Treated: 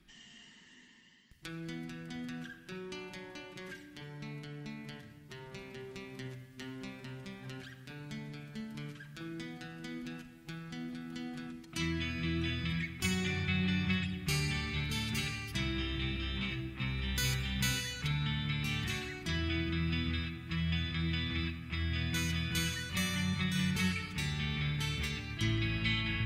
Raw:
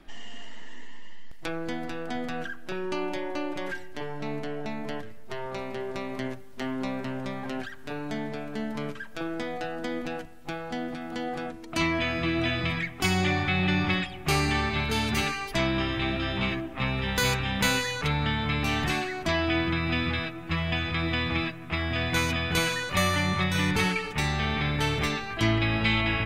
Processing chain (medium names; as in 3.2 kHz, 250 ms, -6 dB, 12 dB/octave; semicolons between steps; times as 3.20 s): high-pass 55 Hz; amplifier tone stack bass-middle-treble 6-0-2; simulated room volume 3800 m³, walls mixed, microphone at 1 m; trim +8.5 dB